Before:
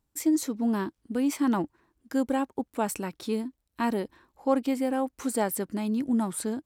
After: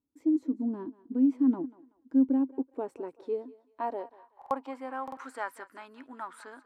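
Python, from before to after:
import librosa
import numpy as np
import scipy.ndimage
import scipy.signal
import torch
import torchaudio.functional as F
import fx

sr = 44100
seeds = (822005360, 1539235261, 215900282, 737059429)

p1 = fx.small_body(x, sr, hz=(260.0, 980.0), ring_ms=100, db=9)
p2 = p1 + fx.echo_thinned(p1, sr, ms=190, feedback_pct=32, hz=420.0, wet_db=-18.0, dry=0)
p3 = fx.filter_sweep_bandpass(p2, sr, from_hz=260.0, to_hz=1400.0, start_s=2.21, end_s=5.25, q=2.6)
p4 = fx.peak_eq(p3, sr, hz=200.0, db=-12.5, octaves=0.78)
p5 = fx.buffer_glitch(p4, sr, at_s=(4.37, 5.03), block=2048, repeats=2)
y = p5 * librosa.db_to_amplitude(3.0)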